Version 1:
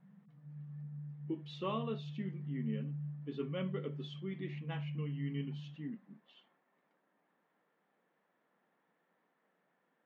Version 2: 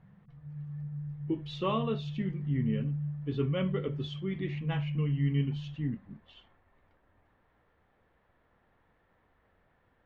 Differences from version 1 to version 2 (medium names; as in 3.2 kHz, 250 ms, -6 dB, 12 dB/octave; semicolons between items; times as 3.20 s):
speech +7.0 dB; master: remove brick-wall FIR high-pass 150 Hz